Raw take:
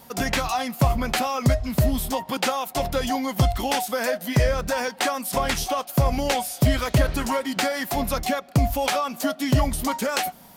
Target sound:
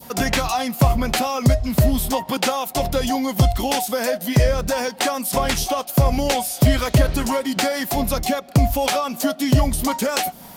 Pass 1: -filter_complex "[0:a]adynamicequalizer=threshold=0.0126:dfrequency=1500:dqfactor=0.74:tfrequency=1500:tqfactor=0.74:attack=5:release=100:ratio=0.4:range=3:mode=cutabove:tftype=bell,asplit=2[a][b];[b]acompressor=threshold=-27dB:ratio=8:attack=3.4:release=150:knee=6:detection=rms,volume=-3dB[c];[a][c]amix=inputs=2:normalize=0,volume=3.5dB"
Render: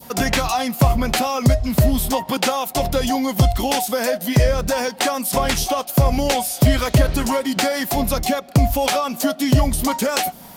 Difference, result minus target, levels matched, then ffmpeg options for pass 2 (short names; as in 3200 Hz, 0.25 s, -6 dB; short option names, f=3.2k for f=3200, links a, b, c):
compressor: peak gain reduction -7 dB
-filter_complex "[0:a]adynamicequalizer=threshold=0.0126:dfrequency=1500:dqfactor=0.74:tfrequency=1500:tqfactor=0.74:attack=5:release=100:ratio=0.4:range=3:mode=cutabove:tftype=bell,asplit=2[a][b];[b]acompressor=threshold=-35dB:ratio=8:attack=3.4:release=150:knee=6:detection=rms,volume=-3dB[c];[a][c]amix=inputs=2:normalize=0,volume=3.5dB"